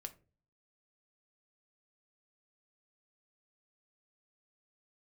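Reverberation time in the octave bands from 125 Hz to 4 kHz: 0.70, 0.60, 0.45, 0.30, 0.25, 0.20 seconds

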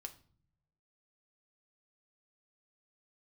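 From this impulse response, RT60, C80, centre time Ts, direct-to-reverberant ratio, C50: 0.50 s, 20.0 dB, 7 ms, 4.5 dB, 15.0 dB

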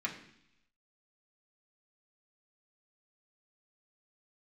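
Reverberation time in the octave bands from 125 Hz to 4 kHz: 0.90, 0.90, 0.70, 0.75, 0.90, 1.0 seconds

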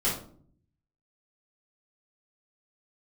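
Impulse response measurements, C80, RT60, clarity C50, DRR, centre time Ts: 10.0 dB, 0.55 s, 5.0 dB, −9.5 dB, 36 ms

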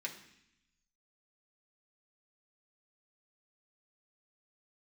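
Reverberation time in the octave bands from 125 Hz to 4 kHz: 1.3, 1.1, 0.70, 0.75, 1.0, 0.95 seconds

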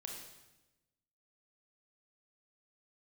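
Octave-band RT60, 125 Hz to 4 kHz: 1.4, 1.3, 1.1, 0.95, 0.95, 0.95 seconds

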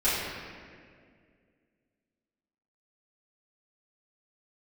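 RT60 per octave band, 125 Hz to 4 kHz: 2.4, 2.7, 2.4, 1.7, 1.9, 1.4 seconds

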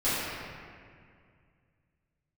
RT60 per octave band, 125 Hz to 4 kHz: 3.1, 2.6, 2.2, 2.0, 2.1, 1.4 seconds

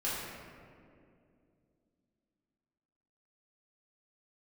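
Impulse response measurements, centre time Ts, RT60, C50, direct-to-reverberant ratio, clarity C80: 121 ms, 2.4 s, −1.5 dB, −9.5 dB, 1.0 dB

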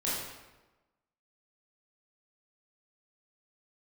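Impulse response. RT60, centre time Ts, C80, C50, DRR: 1.1 s, 78 ms, 2.5 dB, 0.0 dB, −8.5 dB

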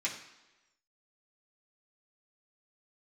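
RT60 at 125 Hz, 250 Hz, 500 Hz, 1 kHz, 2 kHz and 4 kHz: 0.85, 1.0, 1.1, 1.1, 1.0, 1.0 seconds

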